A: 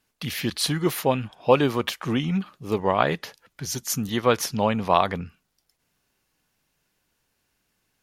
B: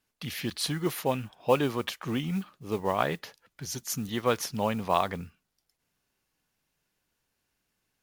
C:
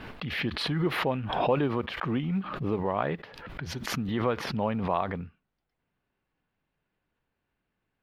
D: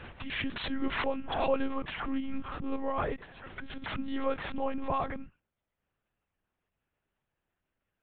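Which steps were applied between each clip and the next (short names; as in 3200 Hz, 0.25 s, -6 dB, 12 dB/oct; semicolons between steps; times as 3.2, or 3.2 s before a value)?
modulation noise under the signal 25 dB; gain -6 dB
in parallel at +1.5 dB: limiter -18.5 dBFS, peak gain reduction 10 dB; on the sum: air absorption 430 m; backwards sustainer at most 45 dB/s; gain -5 dB
HPF 88 Hz 6 dB/oct; monotone LPC vocoder at 8 kHz 270 Hz; gain -2.5 dB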